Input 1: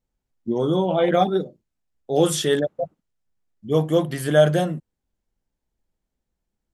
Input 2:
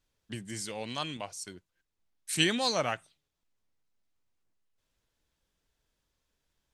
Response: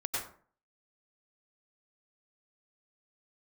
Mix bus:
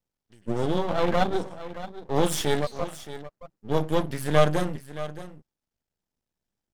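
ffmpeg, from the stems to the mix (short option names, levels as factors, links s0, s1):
-filter_complex "[0:a]highpass=70,volume=0.944,asplit=2[s0][s1];[s1]volume=0.2[s2];[1:a]volume=0.188,asplit=2[s3][s4];[s4]volume=0.355[s5];[2:a]atrim=start_sample=2205[s6];[s5][s6]afir=irnorm=-1:irlink=0[s7];[s2]aecho=0:1:622:1[s8];[s0][s3][s7][s8]amix=inputs=4:normalize=0,equalizer=f=5200:w=6.2:g=4,aeval=exprs='max(val(0),0)':c=same"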